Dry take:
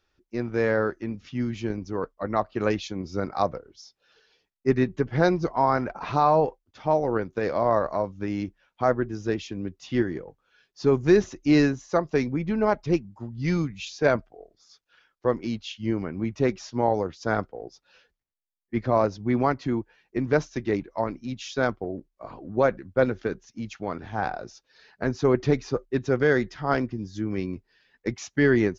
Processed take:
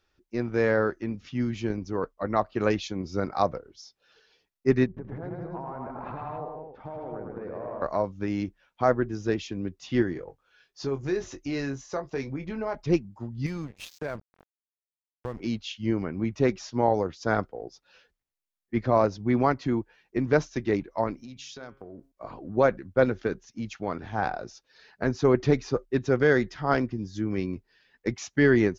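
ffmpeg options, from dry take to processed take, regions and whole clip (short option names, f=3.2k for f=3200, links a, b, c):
-filter_complex "[0:a]asettb=1/sr,asplit=3[a][b][c];[a]atrim=end=4.864[d];[b]atrim=start=4.86:end=7.82,asetpts=PTS-STARTPTS,afade=t=in:d=0.004:c=qsin,afade=t=out:st=2.956:d=0.004:c=qsin,lowpass=1.2k,acompressor=threshold=-35dB:ratio=8:attack=3.2:release=140:knee=1:detection=peak,aecho=1:1:82|107|187|263:0.1|0.708|0.531|0.501,atrim=end_sample=130536[e];[c]atrim=start=7.816[f];[d][e]acrossfade=d=0.004:c1=hsin:c2=qsin[g];[g][f]acrossfade=d=0.004:c1=qsin:c2=hsin,asettb=1/sr,asplit=3[h][i][j];[h]atrim=end=10.134[k];[i]atrim=start=10.13:end=12.75,asetpts=PTS-STARTPTS,afade=t=in:d=0.004:c=qsin,afade=t=out:st=2.616:d=0.004:c=qsin,equalizer=f=200:w=1.7:g=-6,acompressor=threshold=-33dB:ratio=2:attack=3.2:release=140:knee=1:detection=peak,asplit=2[l][m];[m]adelay=22,volume=-8dB[n];[l][n]amix=inputs=2:normalize=0,atrim=end_sample=115542[o];[j]atrim=start=12.746[p];[k][o]acrossfade=d=0.004:c1=hsin:c2=qsin[q];[q][p]acrossfade=d=0.004:c1=qsin:c2=hsin,asettb=1/sr,asplit=3[r][s][t];[r]atrim=end=13.464[u];[s]atrim=start=13.46:end=15.4,asetpts=PTS-STARTPTS,afade=t=in:d=0.004:c=qsin,afade=t=out:st=1.936:d=0.004:c=qsin,asubboost=boost=6:cutoff=150,aeval=exprs='sgn(val(0))*max(abs(val(0))-0.0119,0)':c=same,acompressor=threshold=-31dB:ratio=4:attack=3.2:release=140:knee=1:detection=peak[v];[t]atrim=start=15.396[w];[u][v]acrossfade=d=0.004:c1=hsin:c2=qsin[x];[x][w]acrossfade=d=0.004:c1=qsin:c2=hsin,asettb=1/sr,asplit=3[y][z][aa];[y]atrim=end=21.144[ab];[z]atrim=start=21.14:end=22.12,asetpts=PTS-STARTPTS,afade=t=in:d=0.004:c=qsin,afade=t=out:st=0.976:d=0.004:c=qsin,highshelf=f=4k:g=6.5,acompressor=threshold=-41dB:ratio=4:attack=3.2:release=140:knee=1:detection=peak,bandreject=f=135.8:t=h:w=4,bandreject=f=271.6:t=h:w=4,bandreject=f=407.4:t=h:w=4,bandreject=f=543.2:t=h:w=4,bandreject=f=679:t=h:w=4,bandreject=f=814.8:t=h:w=4,bandreject=f=950.6:t=h:w=4,bandreject=f=1.0864k:t=h:w=4,bandreject=f=1.2222k:t=h:w=4,bandreject=f=1.358k:t=h:w=4,bandreject=f=1.4938k:t=h:w=4,bandreject=f=1.6296k:t=h:w=4,bandreject=f=1.7654k:t=h:w=4,bandreject=f=1.9012k:t=h:w=4,bandreject=f=2.037k:t=h:w=4,bandreject=f=2.1728k:t=h:w=4,bandreject=f=2.3086k:t=h:w=4,bandreject=f=2.4444k:t=h:w=4,bandreject=f=2.5802k:t=h:w=4,bandreject=f=2.716k:t=h:w=4,bandreject=f=2.8518k:t=h:w=4,bandreject=f=2.9876k:t=h:w=4,bandreject=f=3.1234k:t=h:w=4,bandreject=f=3.2592k:t=h:w=4,bandreject=f=3.395k:t=h:w=4[ac];[aa]atrim=start=22.116[ad];[ab][ac]acrossfade=d=0.004:c1=hsin:c2=qsin[ae];[ae][ad]acrossfade=d=0.004:c1=qsin:c2=hsin"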